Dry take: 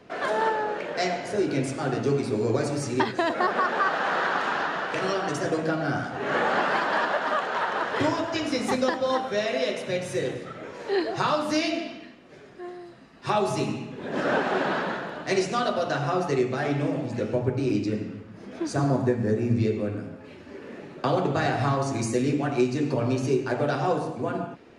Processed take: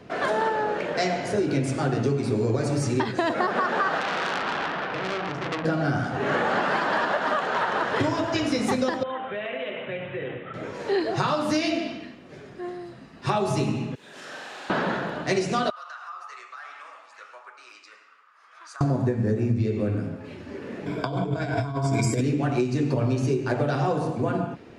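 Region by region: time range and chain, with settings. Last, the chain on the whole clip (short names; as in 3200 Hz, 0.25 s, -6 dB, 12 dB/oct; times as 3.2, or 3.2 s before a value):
4–5.65 air absorption 220 m + core saturation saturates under 3400 Hz
9.03–10.54 steep low-pass 3300 Hz 72 dB/oct + low shelf 470 Hz -10.5 dB + compressor 3:1, threshold -32 dBFS
13.95–14.7 pre-emphasis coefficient 0.97 + flutter echo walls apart 7.4 m, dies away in 1.1 s + compressor 1.5:1, threshold -46 dBFS
15.7–18.81 ladder high-pass 1100 Hz, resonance 70% + compressor 3:1, threshold -41 dBFS
20.86–22.21 ripple EQ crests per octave 1.7, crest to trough 15 dB + negative-ratio compressor -27 dBFS, ratio -0.5
whole clip: bell 110 Hz +6 dB 2 oct; compressor, threshold -23 dBFS; gain +3 dB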